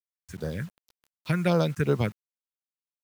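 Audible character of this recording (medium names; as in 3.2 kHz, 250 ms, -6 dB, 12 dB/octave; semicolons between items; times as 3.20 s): phasing stages 4, 2.7 Hz, lowest notch 610–2500 Hz; a quantiser's noise floor 8-bit, dither none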